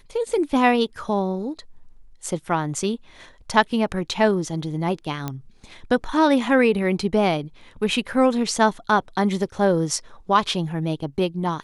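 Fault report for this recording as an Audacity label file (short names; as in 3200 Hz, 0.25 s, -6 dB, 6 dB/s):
5.280000	5.280000	pop -13 dBFS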